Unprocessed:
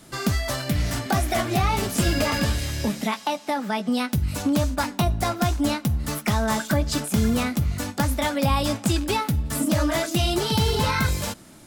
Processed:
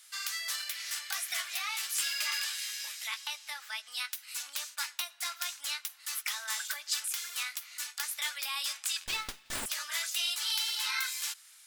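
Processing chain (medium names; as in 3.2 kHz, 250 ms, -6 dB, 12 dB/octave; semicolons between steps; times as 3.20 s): Bessel high-pass 2.2 kHz, order 4; 9.06–9.66 s: sliding maximum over 3 samples; trim -2 dB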